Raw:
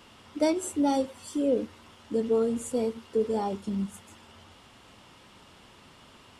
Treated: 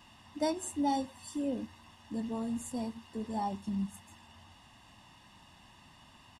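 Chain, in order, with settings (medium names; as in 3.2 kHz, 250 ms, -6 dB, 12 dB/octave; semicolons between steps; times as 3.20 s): comb 1.1 ms, depth 79%; trim -6.5 dB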